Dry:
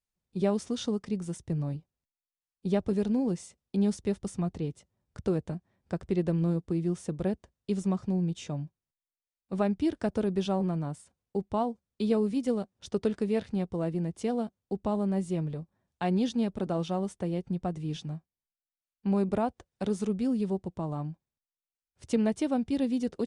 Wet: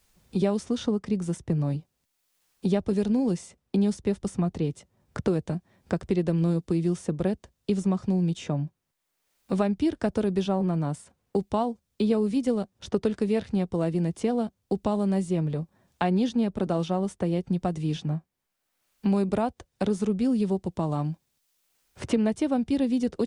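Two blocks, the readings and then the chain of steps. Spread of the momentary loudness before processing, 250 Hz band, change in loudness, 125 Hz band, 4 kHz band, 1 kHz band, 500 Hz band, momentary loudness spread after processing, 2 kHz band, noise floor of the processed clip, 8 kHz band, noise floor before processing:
10 LU, +4.0 dB, +3.5 dB, +4.5 dB, +3.5 dB, +3.5 dB, +3.5 dB, 7 LU, +4.5 dB, −78 dBFS, +2.5 dB, below −85 dBFS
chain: multiband upward and downward compressor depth 70%
level +3.5 dB

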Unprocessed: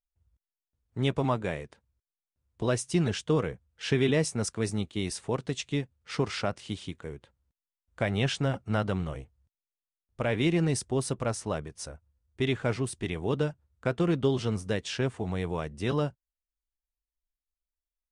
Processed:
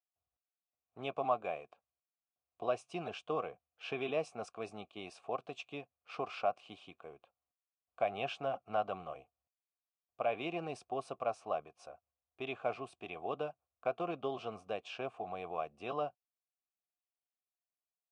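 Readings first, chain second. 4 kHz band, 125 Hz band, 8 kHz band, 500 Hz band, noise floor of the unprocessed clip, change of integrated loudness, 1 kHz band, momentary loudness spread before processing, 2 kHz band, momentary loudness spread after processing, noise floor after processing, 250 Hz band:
−12.5 dB, −23.5 dB, below −20 dB, −7.0 dB, below −85 dBFS, −9.5 dB, −0.5 dB, 11 LU, −10.0 dB, 12 LU, below −85 dBFS, −17.0 dB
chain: formant filter a
level +5.5 dB

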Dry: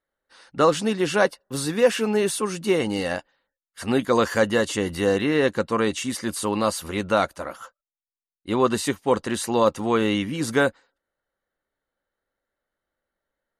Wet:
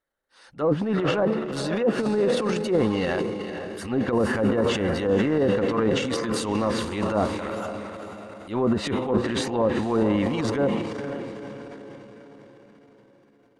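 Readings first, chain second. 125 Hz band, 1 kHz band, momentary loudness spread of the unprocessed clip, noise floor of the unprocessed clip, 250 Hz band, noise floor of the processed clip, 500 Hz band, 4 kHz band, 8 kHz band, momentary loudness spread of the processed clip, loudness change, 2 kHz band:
+2.5 dB, −4.0 dB, 7 LU, below −85 dBFS, +1.0 dB, −58 dBFS, −1.0 dB, −3.0 dB, −8.0 dB, 13 LU, −1.5 dB, −4.5 dB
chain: treble cut that deepens with the level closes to 630 Hz, closed at −15 dBFS
feedback delay with all-pass diffusion 475 ms, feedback 50%, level −9 dB
transient designer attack −11 dB, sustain +9 dB

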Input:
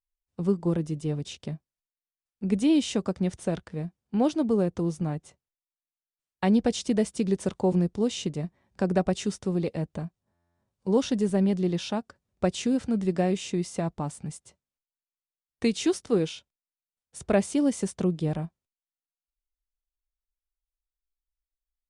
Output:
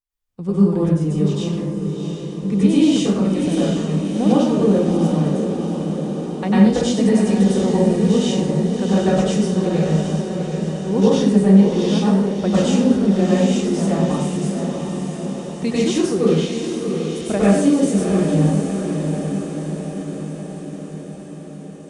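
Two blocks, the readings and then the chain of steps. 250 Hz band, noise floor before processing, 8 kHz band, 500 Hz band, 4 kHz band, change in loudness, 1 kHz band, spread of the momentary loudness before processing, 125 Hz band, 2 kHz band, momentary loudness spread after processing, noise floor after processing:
+11.5 dB, below −85 dBFS, +8.0 dB, +9.5 dB, +8.5 dB, +9.5 dB, +9.0 dB, 13 LU, +12.0 dB, +8.5 dB, 12 LU, −34 dBFS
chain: parametric band 220 Hz +3.5 dB 0.84 octaves
feedback delay with all-pass diffusion 709 ms, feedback 65%, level −6 dB
dense smooth reverb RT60 0.77 s, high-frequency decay 0.7×, pre-delay 85 ms, DRR −8.5 dB
level −1.5 dB

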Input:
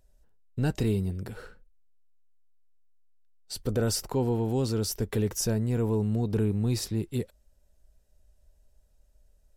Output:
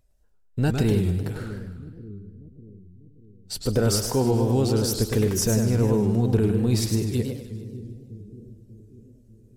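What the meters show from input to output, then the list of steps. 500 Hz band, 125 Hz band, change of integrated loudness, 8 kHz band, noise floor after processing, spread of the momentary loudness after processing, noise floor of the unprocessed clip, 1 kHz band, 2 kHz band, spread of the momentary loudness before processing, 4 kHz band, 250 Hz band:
+6.0 dB, +6.0 dB, +5.5 dB, +6.0 dB, −57 dBFS, 19 LU, −64 dBFS, +6.0 dB, +5.5 dB, 11 LU, +6.0 dB, +6.0 dB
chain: echo with a time of its own for lows and highs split 410 Hz, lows 593 ms, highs 153 ms, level −13.5 dB
noise reduction from a noise print of the clip's start 8 dB
feedback echo with a swinging delay time 103 ms, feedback 35%, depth 190 cents, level −5.5 dB
level +4.5 dB

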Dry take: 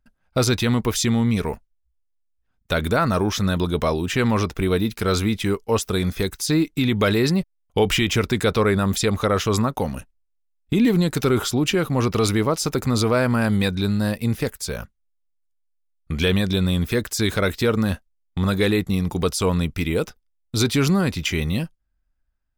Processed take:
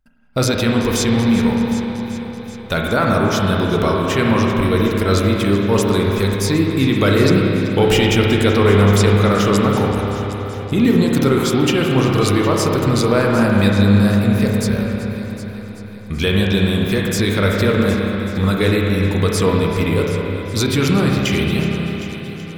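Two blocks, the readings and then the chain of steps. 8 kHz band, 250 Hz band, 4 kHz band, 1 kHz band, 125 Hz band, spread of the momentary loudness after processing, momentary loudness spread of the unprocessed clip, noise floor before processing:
+2.0 dB, +6.0 dB, +3.5 dB, +5.5 dB, +6.0 dB, 10 LU, 7 LU, −70 dBFS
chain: echo machine with several playback heads 381 ms, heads first and second, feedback 52%, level −16.5 dB
spring reverb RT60 3.4 s, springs 30/53 ms, chirp 65 ms, DRR −1.5 dB
level +1.5 dB

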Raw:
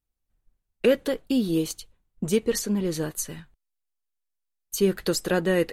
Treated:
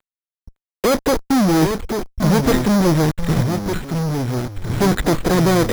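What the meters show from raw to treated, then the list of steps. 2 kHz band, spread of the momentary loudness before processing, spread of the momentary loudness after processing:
+8.0 dB, 11 LU, 8 LU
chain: spike at every zero crossing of −27 dBFS
low-shelf EQ 260 Hz +11 dB
upward compression, threshold −28 dBFS
Gaussian smoothing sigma 2.2 samples
fuzz pedal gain 35 dB, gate −37 dBFS
delay with pitch and tempo change per echo 558 ms, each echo −4 semitones, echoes 3, each echo −6 dB
bad sample-rate conversion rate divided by 8×, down filtered, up hold

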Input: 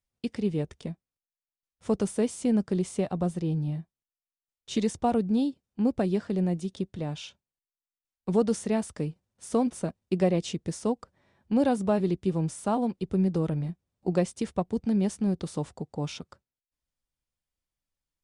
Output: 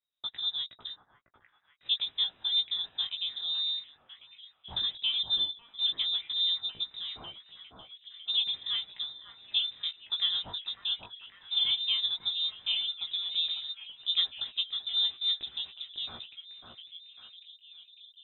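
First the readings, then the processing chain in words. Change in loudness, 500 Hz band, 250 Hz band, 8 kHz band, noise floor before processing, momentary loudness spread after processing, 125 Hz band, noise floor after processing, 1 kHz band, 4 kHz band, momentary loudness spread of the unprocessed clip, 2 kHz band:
−1.0 dB, below −30 dB, below −35 dB, below −35 dB, below −85 dBFS, 20 LU, below −25 dB, −67 dBFS, −18.0 dB, +20.5 dB, 10 LU, −1.0 dB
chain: echo through a band-pass that steps 550 ms, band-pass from 2,900 Hz, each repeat −0.7 octaves, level −5 dB
chorus effect 0.13 Hz, delay 15.5 ms, depth 5 ms
voice inversion scrambler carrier 3,800 Hz
level −2 dB

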